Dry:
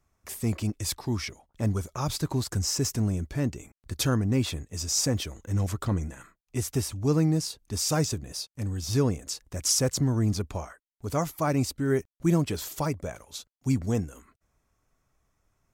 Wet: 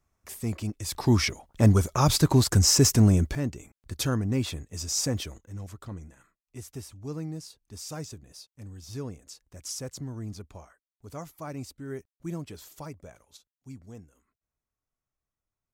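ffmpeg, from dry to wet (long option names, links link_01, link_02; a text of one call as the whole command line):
ffmpeg -i in.wav -af "asetnsamples=nb_out_samples=441:pad=0,asendcmd='0.95 volume volume 8dB;3.35 volume volume -2dB;5.38 volume volume -12dB;13.37 volume volume -18.5dB',volume=-3dB" out.wav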